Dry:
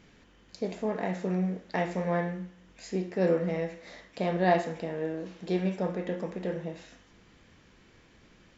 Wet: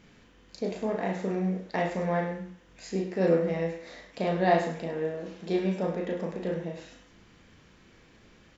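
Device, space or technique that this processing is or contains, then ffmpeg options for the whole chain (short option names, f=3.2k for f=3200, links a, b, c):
slapback doubling: -filter_complex "[0:a]asplit=3[a][b][c];[b]adelay=36,volume=-5dB[d];[c]adelay=102,volume=-10.5dB[e];[a][d][e]amix=inputs=3:normalize=0"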